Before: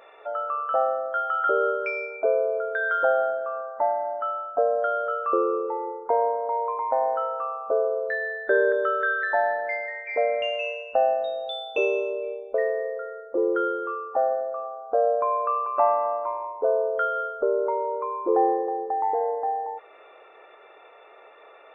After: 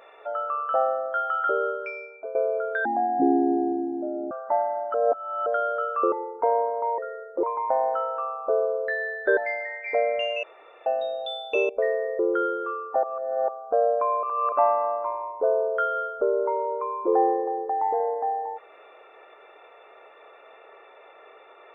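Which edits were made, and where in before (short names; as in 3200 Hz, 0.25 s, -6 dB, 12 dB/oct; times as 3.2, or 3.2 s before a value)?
1.26–2.35 fade out, to -15.5 dB
2.85–3.61 speed 52%
4.24–4.76 reverse
5.42–5.79 cut
8.59–9.6 cut
10.66–11.09 room tone
11.92–12.45 cut
12.95–13.4 move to 6.65
14.24–14.69 reverse
15.44–15.73 reverse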